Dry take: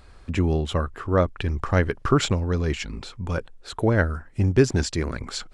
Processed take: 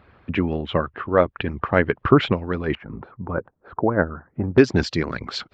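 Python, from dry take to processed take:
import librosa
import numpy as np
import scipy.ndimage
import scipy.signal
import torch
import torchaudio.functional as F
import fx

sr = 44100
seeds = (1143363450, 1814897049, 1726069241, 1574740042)

y = fx.lowpass(x, sr, hz=fx.steps((0.0, 3000.0), (2.75, 1400.0), (4.58, 4600.0)), slope=24)
y = fx.hpss(y, sr, part='harmonic', gain_db=-13)
y = scipy.signal.sosfilt(scipy.signal.butter(2, 79.0, 'highpass', fs=sr, output='sos'), y)
y = y * librosa.db_to_amplitude(6.0)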